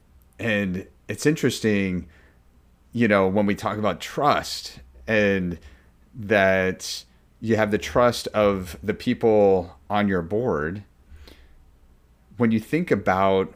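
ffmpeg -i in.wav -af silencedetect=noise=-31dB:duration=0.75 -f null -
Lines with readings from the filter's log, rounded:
silence_start: 2.02
silence_end: 2.95 | silence_duration: 0.92
silence_start: 11.28
silence_end: 12.40 | silence_duration: 1.11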